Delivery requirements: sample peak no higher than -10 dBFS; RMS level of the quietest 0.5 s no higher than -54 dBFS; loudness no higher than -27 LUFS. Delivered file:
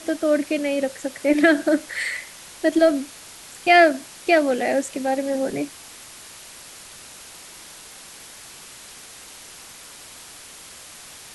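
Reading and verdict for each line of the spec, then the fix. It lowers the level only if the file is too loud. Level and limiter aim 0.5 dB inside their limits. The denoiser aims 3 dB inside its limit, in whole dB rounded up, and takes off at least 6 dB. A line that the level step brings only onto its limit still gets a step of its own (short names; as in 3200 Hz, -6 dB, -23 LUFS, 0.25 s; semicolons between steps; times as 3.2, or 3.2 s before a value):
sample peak -4.0 dBFS: fail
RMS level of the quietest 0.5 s -42 dBFS: fail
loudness -21.0 LUFS: fail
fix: denoiser 9 dB, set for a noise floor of -42 dBFS; gain -6.5 dB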